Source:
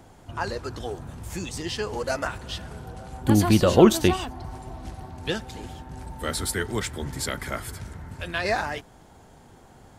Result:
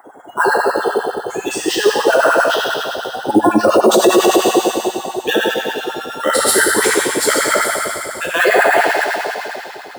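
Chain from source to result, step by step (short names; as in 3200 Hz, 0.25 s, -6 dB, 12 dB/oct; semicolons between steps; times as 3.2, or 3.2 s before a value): 5.73–6.17 sample sorter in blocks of 32 samples; on a send: thin delay 0.133 s, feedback 79%, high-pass 3600 Hz, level -6.5 dB; on the sum: spectral gate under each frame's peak -20 dB strong; plate-style reverb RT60 2.6 s, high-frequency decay 0.95×, DRR -5.5 dB; LFO high-pass sine 10 Hz 340–1600 Hz; in parallel at -11 dB: sample-rate reducer 9300 Hz, jitter 0%; on the sum: high shelf 9100 Hz +9 dB; maximiser +7.5 dB; gain -1 dB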